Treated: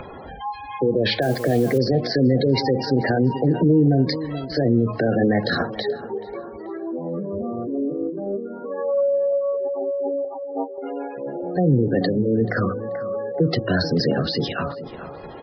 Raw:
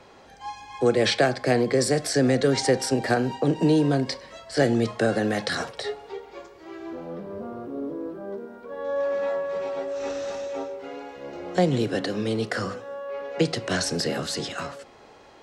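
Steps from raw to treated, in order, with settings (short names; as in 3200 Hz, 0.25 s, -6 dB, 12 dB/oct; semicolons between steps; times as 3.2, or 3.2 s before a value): spectral gate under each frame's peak -15 dB strong; downsampling 11025 Hz; on a send: tape echo 0.433 s, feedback 44%, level -15 dB, low-pass 1600 Hz; on the sum: limiter -17.5 dBFS, peak gain reduction 9.5 dB; 10.24–10.78 comb 6.2 ms, depth 63%; de-hum 108.8 Hz, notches 9; 1.22–1.78 requantised 8-bit, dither triangular; 7.94–8.66 transient shaper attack +4 dB, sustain -2 dB; in parallel at -1 dB: upward compressor, threshold -30 dBFS; on the sum: low shelf 190 Hz +8 dB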